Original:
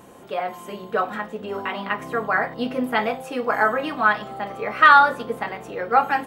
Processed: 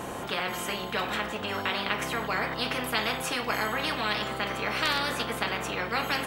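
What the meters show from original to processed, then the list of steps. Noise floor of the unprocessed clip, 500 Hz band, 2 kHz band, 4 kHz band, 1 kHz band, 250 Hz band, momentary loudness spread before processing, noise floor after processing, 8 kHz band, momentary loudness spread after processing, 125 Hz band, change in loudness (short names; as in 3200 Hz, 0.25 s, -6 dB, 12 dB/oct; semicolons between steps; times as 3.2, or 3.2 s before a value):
-43 dBFS, -7.5 dB, -7.5 dB, +5.0 dB, -11.5 dB, -5.5 dB, 16 LU, -36 dBFS, n/a, 3 LU, +2.0 dB, -8.0 dB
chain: high shelf 7000 Hz -5.5 dB; spectral compressor 4:1; gain -8.5 dB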